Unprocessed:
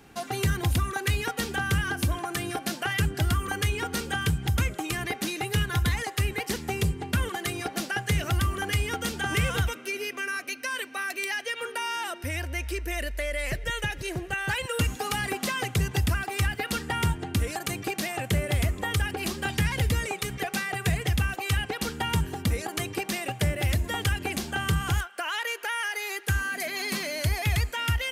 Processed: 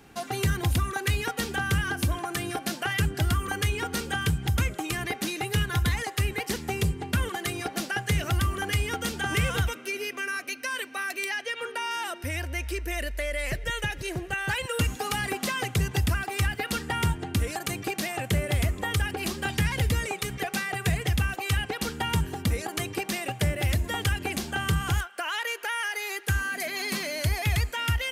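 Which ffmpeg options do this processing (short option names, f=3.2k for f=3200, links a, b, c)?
-filter_complex "[0:a]asettb=1/sr,asplit=3[a][b][c];[a]atrim=end=11.294[d];[b]atrim=start=11.29:end=11.91,asetpts=PTS-STARTPTS,afade=t=in:d=0.004:c=qsin,afade=t=out:st=0.616:d=0.004:c=qsin,highshelf=f=9k:g=-9[e];[c]atrim=start=11.906[f];[d][e]acrossfade=d=0.004:c1=hsin:c2=qsin[g];[g][f]acrossfade=d=0.004:c1=qsin:c2=hsin"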